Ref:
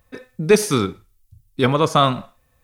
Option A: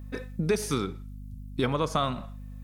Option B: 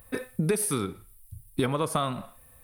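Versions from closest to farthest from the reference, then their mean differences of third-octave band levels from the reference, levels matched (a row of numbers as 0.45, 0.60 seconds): A, B; 4.0, 5.5 decibels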